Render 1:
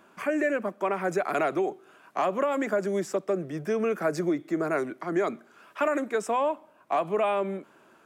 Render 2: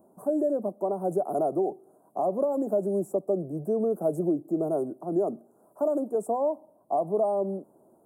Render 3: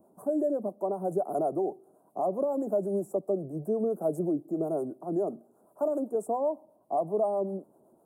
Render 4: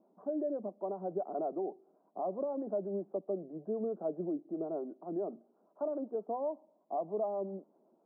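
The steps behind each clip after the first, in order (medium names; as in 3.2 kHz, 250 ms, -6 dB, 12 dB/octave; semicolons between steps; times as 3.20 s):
elliptic band-stop 740–9500 Hz, stop band 70 dB; trim +1.5 dB
harmonic tremolo 7.8 Hz, depth 50%, crossover 500 Hz
brick-wall FIR band-pass 160–2500 Hz; trim -7 dB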